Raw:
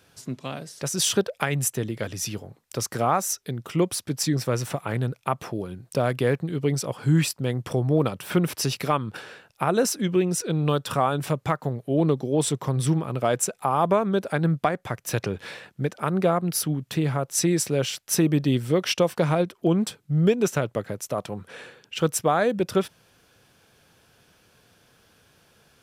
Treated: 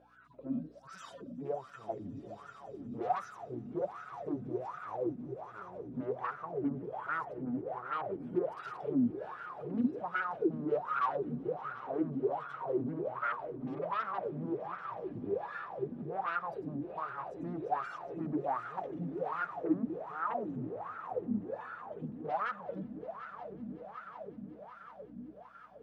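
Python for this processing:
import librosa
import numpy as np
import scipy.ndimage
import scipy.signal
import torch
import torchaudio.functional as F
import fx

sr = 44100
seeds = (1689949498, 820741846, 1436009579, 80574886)

p1 = fx.hpss_only(x, sr, part='harmonic')
p2 = fx.add_hum(p1, sr, base_hz=60, snr_db=20)
p3 = fx.fold_sine(p2, sr, drive_db=18, ceiling_db=-10.0)
p4 = p2 + (p3 * 10.0 ** (-6.0 / 20.0))
p5 = fx.echo_swell(p4, sr, ms=185, loudest=5, wet_db=-15.0)
p6 = fx.wah_lfo(p5, sr, hz=1.3, low_hz=240.0, high_hz=1400.0, q=13.0)
y = p6 * 10.0 ** (-1.5 / 20.0)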